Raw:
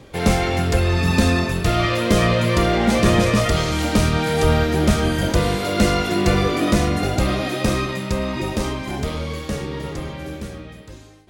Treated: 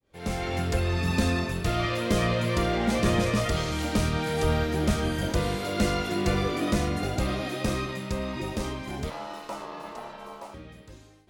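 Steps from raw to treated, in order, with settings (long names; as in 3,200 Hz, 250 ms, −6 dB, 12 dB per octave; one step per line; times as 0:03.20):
fade in at the beginning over 0.57 s
0:09.10–0:10.54: ring modulation 760 Hz
level −8 dB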